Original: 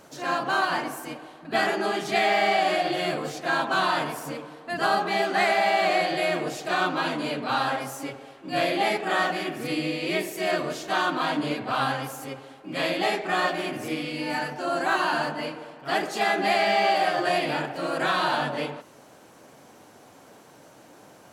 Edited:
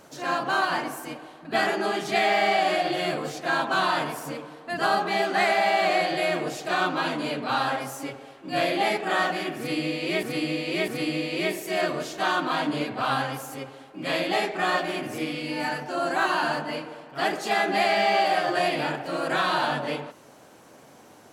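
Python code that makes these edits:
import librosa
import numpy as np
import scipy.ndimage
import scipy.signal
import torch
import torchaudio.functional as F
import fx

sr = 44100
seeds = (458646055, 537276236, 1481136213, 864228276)

y = fx.edit(x, sr, fx.repeat(start_s=9.58, length_s=0.65, count=3), tone=tone)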